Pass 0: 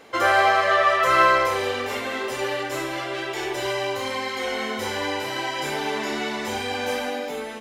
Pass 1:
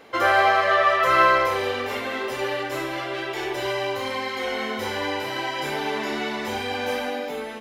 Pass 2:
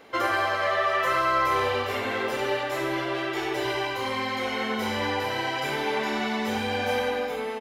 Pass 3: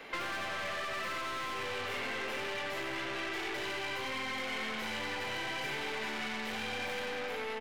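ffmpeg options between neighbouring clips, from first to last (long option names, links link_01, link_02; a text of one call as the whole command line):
ffmpeg -i in.wav -af "equalizer=frequency=7700:width_type=o:width=0.92:gain=-6.5" out.wav
ffmpeg -i in.wav -filter_complex "[0:a]acrossover=split=4900[link_01][link_02];[link_01]alimiter=limit=-15dB:level=0:latency=1:release=105[link_03];[link_03][link_02]amix=inputs=2:normalize=0,asplit=2[link_04][link_05];[link_05]adelay=91,lowpass=frequency=2900:poles=1,volume=-3dB,asplit=2[link_06][link_07];[link_07]adelay=91,lowpass=frequency=2900:poles=1,volume=0.55,asplit=2[link_08][link_09];[link_09]adelay=91,lowpass=frequency=2900:poles=1,volume=0.55,asplit=2[link_10][link_11];[link_11]adelay=91,lowpass=frequency=2900:poles=1,volume=0.55,asplit=2[link_12][link_13];[link_13]adelay=91,lowpass=frequency=2900:poles=1,volume=0.55,asplit=2[link_14][link_15];[link_15]adelay=91,lowpass=frequency=2900:poles=1,volume=0.55,asplit=2[link_16][link_17];[link_17]adelay=91,lowpass=frequency=2900:poles=1,volume=0.55,asplit=2[link_18][link_19];[link_19]adelay=91,lowpass=frequency=2900:poles=1,volume=0.55[link_20];[link_04][link_06][link_08][link_10][link_12][link_14][link_16][link_18][link_20]amix=inputs=9:normalize=0,volume=-2dB" out.wav
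ffmpeg -i in.wav -filter_complex "[0:a]aeval=exprs='(tanh(56.2*val(0)+0.55)-tanh(0.55))/56.2':channel_layout=same,acrossover=split=110|420[link_01][link_02][link_03];[link_01]acompressor=threshold=-52dB:ratio=4[link_04];[link_02]acompressor=threshold=-47dB:ratio=4[link_05];[link_03]acompressor=threshold=-42dB:ratio=4[link_06];[link_04][link_05][link_06]amix=inputs=3:normalize=0,equalizer=frequency=2300:width_type=o:width=1.6:gain=8,volume=1.5dB" out.wav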